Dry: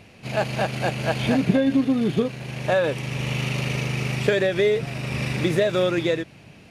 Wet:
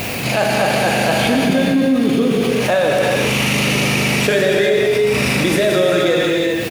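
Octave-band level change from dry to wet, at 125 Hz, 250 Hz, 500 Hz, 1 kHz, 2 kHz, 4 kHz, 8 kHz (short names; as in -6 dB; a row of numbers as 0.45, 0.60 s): +3.5, +7.0, +8.0, +10.0, +10.5, +11.5, +15.0 dB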